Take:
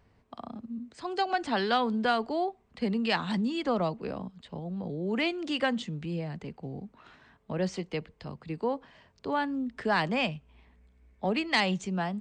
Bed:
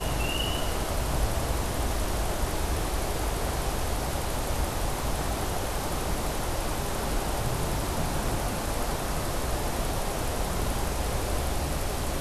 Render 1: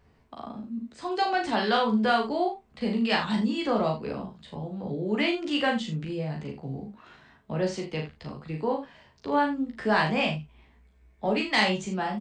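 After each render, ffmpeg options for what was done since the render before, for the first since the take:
-filter_complex "[0:a]asplit=2[s0][s1];[s1]adelay=14,volume=0.596[s2];[s0][s2]amix=inputs=2:normalize=0,asplit=2[s3][s4];[s4]aecho=0:1:38|78:0.631|0.299[s5];[s3][s5]amix=inputs=2:normalize=0"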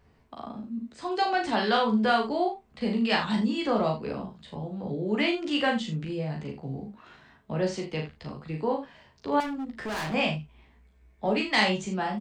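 -filter_complex "[0:a]asettb=1/sr,asplit=3[s0][s1][s2];[s0]atrim=end=9.404[s3];[s1]atrim=start=9.4:end=10.14,asetpts=PTS-STARTPTS,afade=t=in:d=0.004:c=qsin,afade=t=out:st=0.736:d=0.004:c=qsin,volume=33.5,asoftclip=hard,volume=0.0299[s4];[s2]atrim=start=10.136[s5];[s3][s4]acrossfade=d=0.004:c1=hsin:c2=qsin[s6];[s6][s5]acrossfade=d=0.004:c1=qsin:c2=hsin"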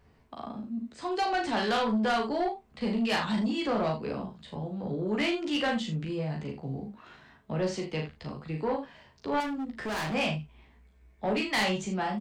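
-af "asoftclip=type=tanh:threshold=0.0794"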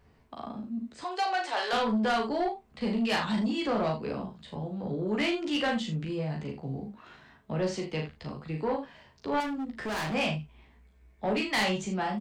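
-filter_complex "[0:a]asettb=1/sr,asplit=3[s0][s1][s2];[s0]atrim=end=1.044[s3];[s1]atrim=start=1.04:end=1.73,asetpts=PTS-STARTPTS,afade=t=in:d=0.004:c=qsin,afade=t=out:st=0.686:d=0.004:c=qsin,highpass=f=470:w=0.5412,highpass=f=470:w=1.3066[s4];[s2]atrim=start=1.726[s5];[s3][s4]acrossfade=d=0.004:c1=hsin:c2=qsin[s6];[s6][s5]acrossfade=d=0.004:c1=qsin:c2=hsin"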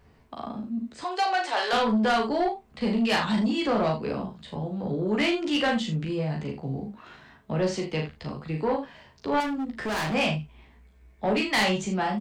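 -af "volume=1.58"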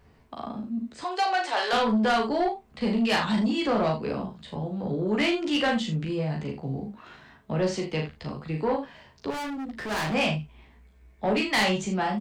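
-filter_complex "[0:a]asettb=1/sr,asplit=3[s0][s1][s2];[s0]atrim=end=9.304[s3];[s1]atrim=start=9.3:end=9.91,asetpts=PTS-STARTPTS,afade=t=in:d=0.004:c=qsin,afade=t=out:st=0.606:d=0.004:c=qsin,asoftclip=type=hard:threshold=0.0266[s4];[s2]atrim=start=9.906[s5];[s3][s4]acrossfade=d=0.004:c1=hsin:c2=qsin[s6];[s6][s5]acrossfade=d=0.004:c1=qsin:c2=hsin"

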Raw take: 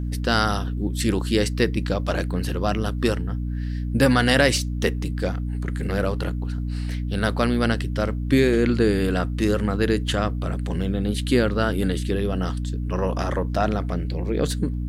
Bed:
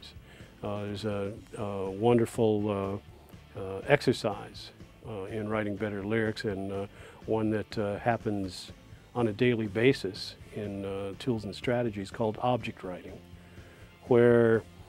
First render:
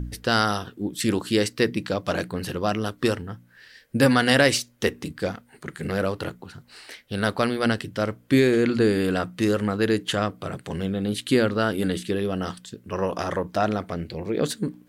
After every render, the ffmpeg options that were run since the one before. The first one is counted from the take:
-af "bandreject=f=60:t=h:w=4,bandreject=f=120:t=h:w=4,bandreject=f=180:t=h:w=4,bandreject=f=240:t=h:w=4,bandreject=f=300:t=h:w=4"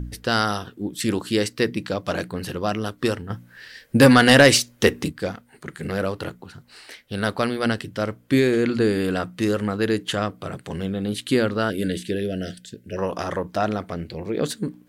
-filter_complex "[0:a]asettb=1/sr,asplit=3[s0][s1][s2];[s0]atrim=end=3.304[s3];[s1]atrim=start=3.3:end=5.1,asetpts=PTS-STARTPTS,afade=t=in:d=0.004:c=qsin,afade=t=out:st=1.796:d=0.004:c=qsin,acontrast=74[s4];[s2]atrim=start=5.096[s5];[s3][s4]acrossfade=d=0.004:c1=hsin:c2=qsin[s6];[s6][s5]acrossfade=d=0.004:c1=qsin:c2=hsin,asettb=1/sr,asplit=3[s7][s8][s9];[s7]atrim=end=11.704[s10];[s8]atrim=start=11.7:end=12.97,asetpts=PTS-STARTPTS,afade=t=in:d=0.004:c=qsin,afade=t=out:st=1.266:d=0.004:c=qsin,asuperstop=centerf=1000:order=12:qfactor=1.3[s11];[s9]atrim=start=12.966[s12];[s10][s11]acrossfade=d=0.004:c1=hsin:c2=qsin[s13];[s13][s12]acrossfade=d=0.004:c1=qsin:c2=hsin"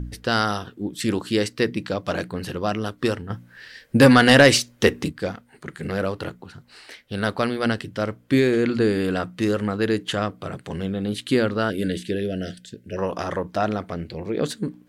-af "highshelf=f=9100:g=-7"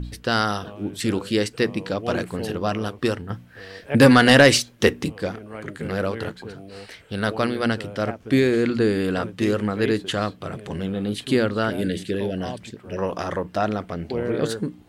-filter_complex "[1:a]volume=0.501[s0];[0:a][s0]amix=inputs=2:normalize=0"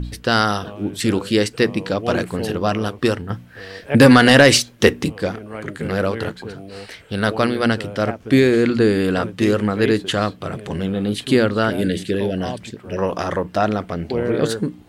-af "volume=1.68,alimiter=limit=0.891:level=0:latency=1"

